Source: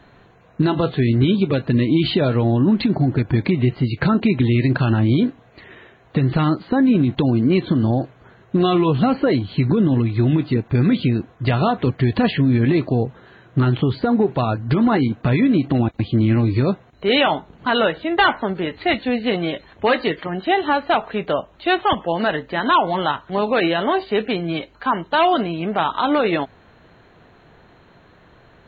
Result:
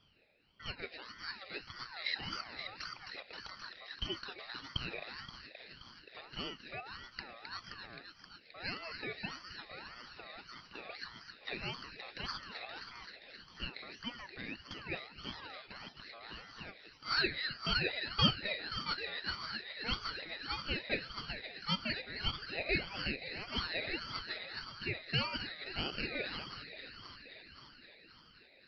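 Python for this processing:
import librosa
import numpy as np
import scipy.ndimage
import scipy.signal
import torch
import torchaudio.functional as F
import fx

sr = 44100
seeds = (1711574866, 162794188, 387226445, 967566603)

y = fx.double_bandpass(x, sr, hz=2100.0, octaves=0.94)
y = fx.echo_wet_highpass(y, sr, ms=263, feedback_pct=78, hz=2300.0, wet_db=-5)
y = fx.ring_lfo(y, sr, carrier_hz=1300.0, swing_pct=30, hz=1.7)
y = y * librosa.db_to_amplitude(-5.0)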